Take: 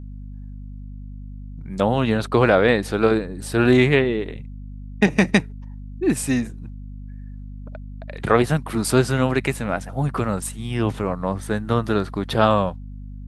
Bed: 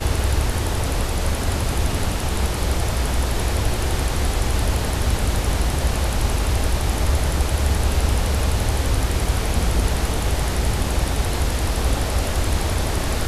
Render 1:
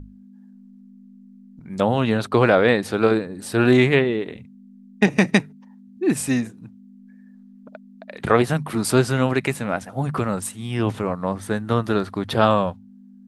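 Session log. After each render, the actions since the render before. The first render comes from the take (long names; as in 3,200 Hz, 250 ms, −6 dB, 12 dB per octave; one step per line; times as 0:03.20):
mains-hum notches 50/100/150 Hz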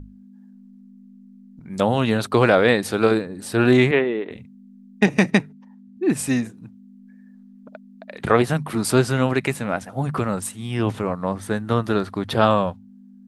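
0:01.74–0:03.22: high-shelf EQ 5,100 Hz +7.5 dB
0:03.91–0:04.31: band-pass filter 250–2,700 Hz
0:05.30–0:06.19: high-shelf EQ 4,200 Hz −5.5 dB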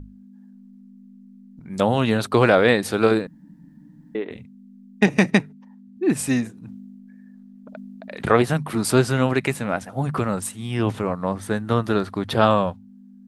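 0:03.27–0:04.15: fill with room tone
0:06.52–0:08.29: level that may fall only so fast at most 23 dB per second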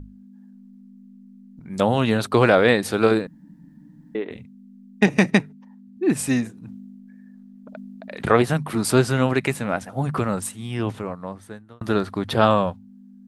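0:10.39–0:11.81: fade out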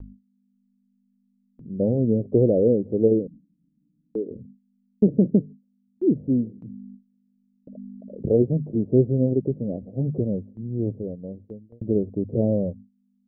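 Butterworth low-pass 540 Hz 48 dB per octave
noise gate with hold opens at −35 dBFS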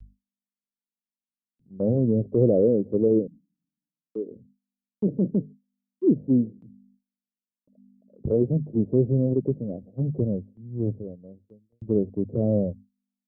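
brickwall limiter −14 dBFS, peak gain reduction 8 dB
multiband upward and downward expander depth 100%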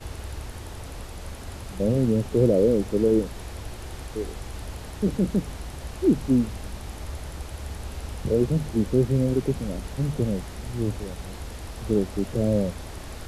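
mix in bed −15.5 dB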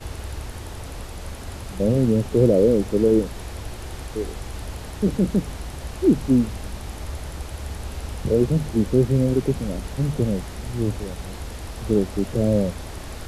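level +3 dB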